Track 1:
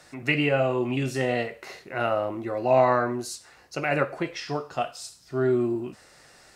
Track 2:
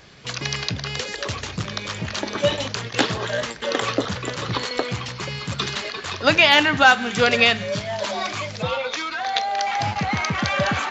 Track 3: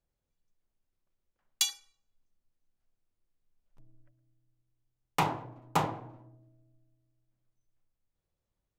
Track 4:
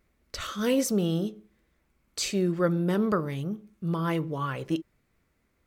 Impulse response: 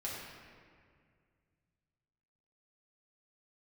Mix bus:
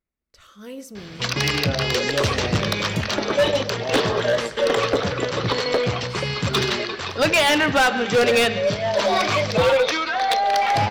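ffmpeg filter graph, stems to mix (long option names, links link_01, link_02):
-filter_complex "[0:a]adelay=1150,volume=-9dB[link_01];[1:a]bandreject=frequency=6800:width=5.5,adynamicequalizer=threshold=0.0141:dfrequency=480:dqfactor=1.7:tfrequency=480:tqfactor=1.7:attack=5:release=100:ratio=0.375:range=4:mode=boostabove:tftype=bell,adelay=950,volume=2dB,asplit=2[link_02][link_03];[link_03]volume=-19.5dB[link_04];[2:a]adelay=1350,volume=-16dB[link_05];[3:a]volume=-18.5dB,asplit=2[link_06][link_07];[link_07]volume=-16.5dB[link_08];[4:a]atrim=start_sample=2205[link_09];[link_08][link_09]afir=irnorm=-1:irlink=0[link_10];[link_04]aecho=0:1:141|282|423|564|705|846|987:1|0.49|0.24|0.118|0.0576|0.0282|0.0138[link_11];[link_01][link_02][link_05][link_06][link_10][link_11]amix=inputs=6:normalize=0,dynaudnorm=framelen=130:gausssize=9:maxgain=10dB,aeval=exprs='0.944*(cos(1*acos(clip(val(0)/0.944,-1,1)))-cos(1*PI/2))+0.188*(cos(2*acos(clip(val(0)/0.944,-1,1)))-cos(2*PI/2))+0.0188*(cos(3*acos(clip(val(0)/0.944,-1,1)))-cos(3*PI/2))+0.0266*(cos(4*acos(clip(val(0)/0.944,-1,1)))-cos(4*PI/2))':channel_layout=same,asoftclip=type=hard:threshold=-13.5dB"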